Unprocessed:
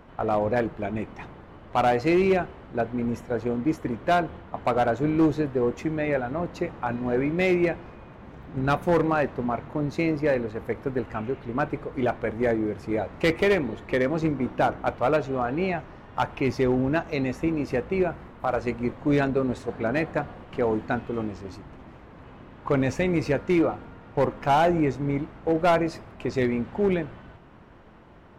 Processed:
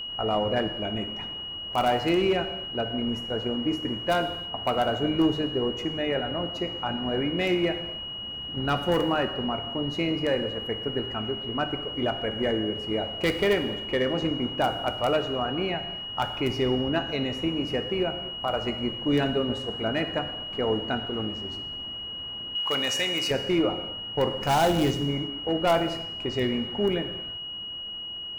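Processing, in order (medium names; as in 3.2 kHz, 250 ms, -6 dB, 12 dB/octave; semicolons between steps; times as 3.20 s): 24.40–25.05 s: tone controls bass +5 dB, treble +13 dB; whistle 2.9 kHz -30 dBFS; 22.55–23.31 s: tilt EQ +4.5 dB/octave; in parallel at -11 dB: integer overflow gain 13.5 dB; on the sum: gated-style reverb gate 350 ms falling, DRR 7.5 dB; trim -5 dB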